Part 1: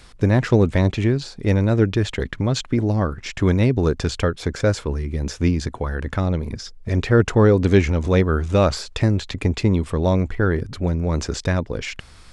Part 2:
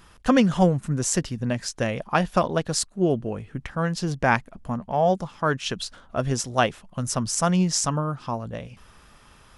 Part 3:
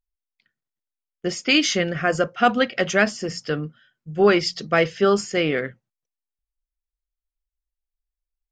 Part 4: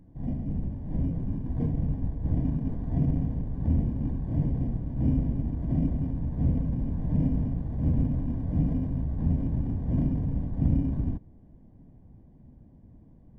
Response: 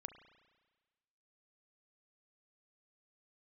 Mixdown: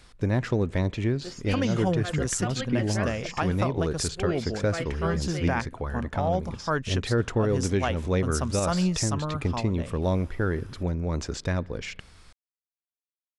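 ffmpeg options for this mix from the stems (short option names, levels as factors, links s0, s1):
-filter_complex "[0:a]volume=0.376,asplit=2[s0][s1];[s1]volume=0.422[s2];[1:a]adelay=1250,volume=0.668[s3];[2:a]volume=0.178[s4];[4:a]atrim=start_sample=2205[s5];[s2][s5]afir=irnorm=-1:irlink=0[s6];[s0][s3][s4][s6]amix=inputs=4:normalize=0,alimiter=limit=0.188:level=0:latency=1:release=216"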